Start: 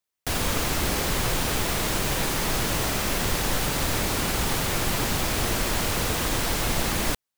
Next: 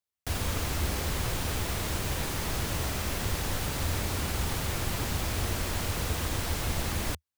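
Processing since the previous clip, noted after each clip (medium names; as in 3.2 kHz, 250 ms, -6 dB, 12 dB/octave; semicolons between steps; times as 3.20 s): peaking EQ 79 Hz +11 dB 0.86 oct; trim -7.5 dB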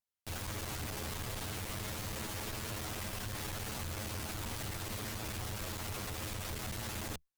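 comb filter that takes the minimum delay 9.4 ms; peak limiter -25 dBFS, peak gain reduction 7 dB; valve stage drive 36 dB, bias 0.6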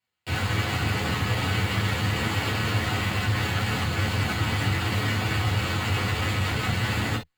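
reverberation, pre-delay 3 ms, DRR -5.5 dB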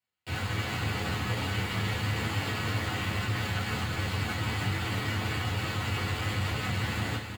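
delay 324 ms -7 dB; trim -6 dB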